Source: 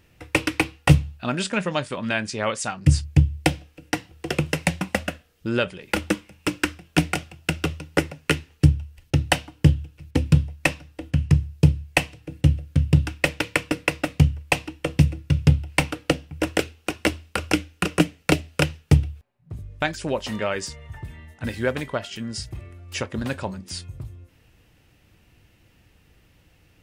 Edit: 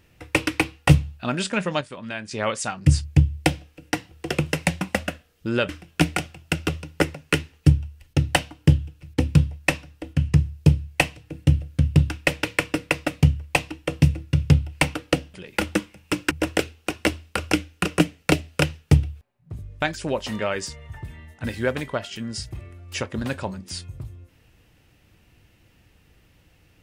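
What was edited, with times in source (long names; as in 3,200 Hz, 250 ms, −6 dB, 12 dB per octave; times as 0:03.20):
0:01.81–0:02.31: clip gain −7.5 dB
0:05.69–0:06.66: move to 0:16.31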